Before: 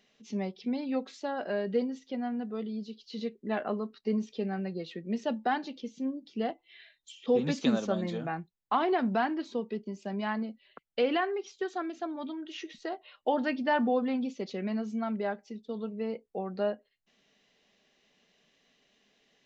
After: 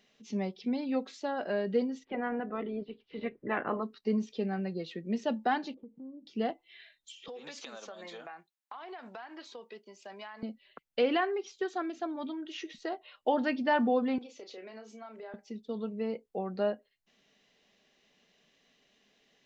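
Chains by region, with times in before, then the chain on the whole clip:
2.03–3.82 s: spectral peaks clipped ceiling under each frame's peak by 17 dB + low-pass 2.2 kHz 24 dB/octave
5.74–6.27 s: low-pass 1 kHz 24 dB/octave + compression 3:1, threshold -47 dBFS
7.28–10.43 s: high-pass 690 Hz + compression 16:1, threshold -40 dBFS
14.18–15.34 s: high-pass 360 Hz 24 dB/octave + compression 4:1, threshold -45 dBFS + doubling 32 ms -8 dB
whole clip: none

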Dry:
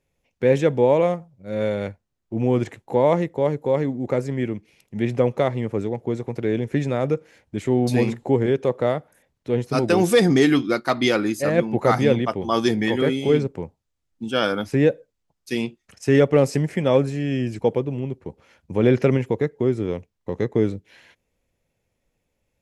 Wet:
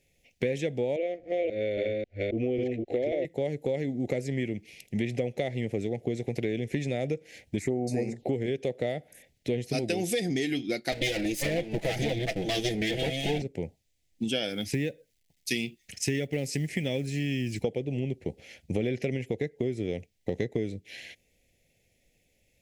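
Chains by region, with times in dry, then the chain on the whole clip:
0.96–3.25 s: chunks repeated in reverse 270 ms, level 0 dB + low-pass 2.8 kHz + static phaser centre 400 Hz, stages 4
7.59–8.29 s: peaking EQ 610 Hz +6 dB 1.9 oct + touch-sensitive phaser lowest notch 470 Hz, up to 3.3 kHz, full sweep at -15 dBFS
10.92–13.42 s: comb filter that takes the minimum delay 6.1 ms + waveshaping leveller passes 1
14.49–17.64 s: peaking EQ 610 Hz -7.5 dB 1.3 oct + companded quantiser 8-bit
whole clip: FFT filter 740 Hz 0 dB, 1.1 kHz -25 dB, 2 kHz +6 dB; compression 10:1, threshold -29 dBFS; trim +3 dB

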